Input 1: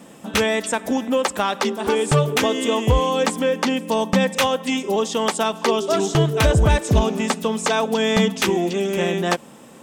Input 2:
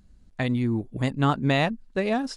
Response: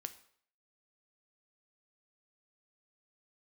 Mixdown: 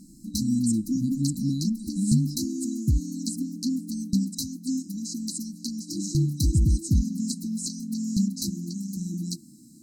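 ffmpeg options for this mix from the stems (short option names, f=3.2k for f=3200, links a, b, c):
-filter_complex "[0:a]volume=-4dB[a];[1:a]equalizer=f=210:t=o:w=0.65:g=13.5,volume=-7dB[b];[a][b]amix=inputs=2:normalize=0,afftfilt=real='re*(1-between(b*sr/4096,340,3900))':imag='im*(1-between(b*sr/4096,340,3900))':win_size=4096:overlap=0.75"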